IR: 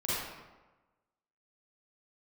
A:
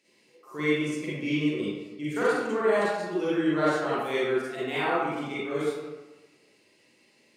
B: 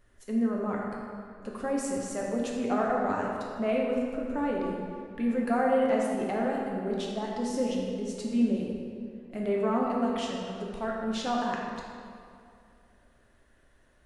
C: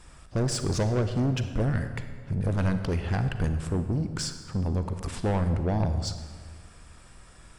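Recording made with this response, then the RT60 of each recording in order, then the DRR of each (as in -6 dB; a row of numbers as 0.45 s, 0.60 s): A; 1.2 s, 2.4 s, 1.7 s; -10.0 dB, -2.5 dB, 8.5 dB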